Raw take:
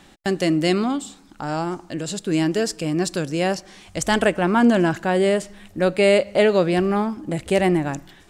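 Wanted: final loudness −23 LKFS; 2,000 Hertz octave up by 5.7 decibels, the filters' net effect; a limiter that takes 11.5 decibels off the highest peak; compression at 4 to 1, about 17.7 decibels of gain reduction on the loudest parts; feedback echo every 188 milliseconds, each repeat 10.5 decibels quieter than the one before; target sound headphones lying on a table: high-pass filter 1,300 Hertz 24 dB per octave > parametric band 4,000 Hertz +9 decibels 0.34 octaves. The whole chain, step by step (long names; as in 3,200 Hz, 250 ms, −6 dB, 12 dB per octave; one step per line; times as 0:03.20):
parametric band 2,000 Hz +7 dB
downward compressor 4 to 1, threshold −33 dBFS
brickwall limiter −27.5 dBFS
high-pass filter 1,300 Hz 24 dB per octave
parametric band 4,000 Hz +9 dB 0.34 octaves
repeating echo 188 ms, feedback 30%, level −10.5 dB
level +18.5 dB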